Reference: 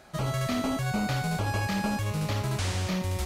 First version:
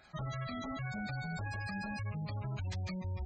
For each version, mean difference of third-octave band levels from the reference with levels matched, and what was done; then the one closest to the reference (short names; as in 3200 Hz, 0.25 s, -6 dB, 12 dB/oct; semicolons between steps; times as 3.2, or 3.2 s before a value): 11.5 dB: spectral gate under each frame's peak -20 dB strong; passive tone stack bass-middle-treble 5-5-5; limiter -38 dBFS, peak gain reduction 5 dB; gain +7 dB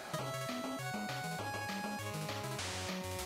4.5 dB: HPF 340 Hz 6 dB/oct; compressor 10:1, threshold -46 dBFS, peak gain reduction 18 dB; gain +8.5 dB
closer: second